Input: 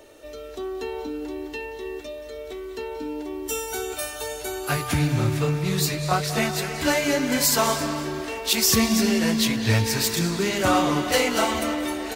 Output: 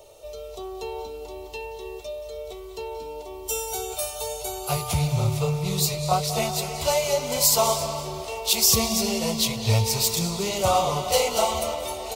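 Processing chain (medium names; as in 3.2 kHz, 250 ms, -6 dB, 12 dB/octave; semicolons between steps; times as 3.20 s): static phaser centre 690 Hz, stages 4; trim +2.5 dB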